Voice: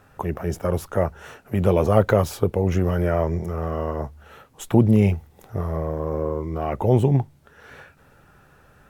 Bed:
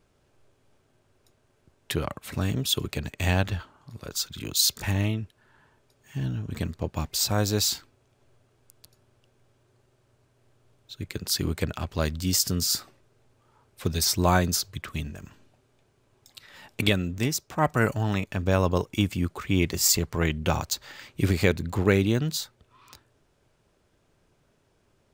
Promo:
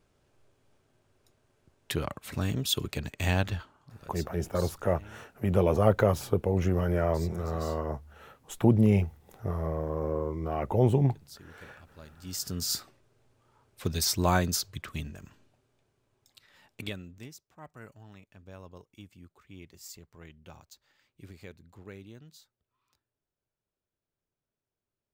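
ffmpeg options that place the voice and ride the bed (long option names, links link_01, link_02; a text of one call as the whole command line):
ffmpeg -i stem1.wav -i stem2.wav -filter_complex "[0:a]adelay=3900,volume=-5.5dB[link_01];[1:a]volume=17dB,afade=type=out:start_time=3.54:duration=0.77:silence=0.0944061,afade=type=in:start_time=12.16:duration=0.68:silence=0.1,afade=type=out:start_time=14.76:duration=2.72:silence=0.0841395[link_02];[link_01][link_02]amix=inputs=2:normalize=0" out.wav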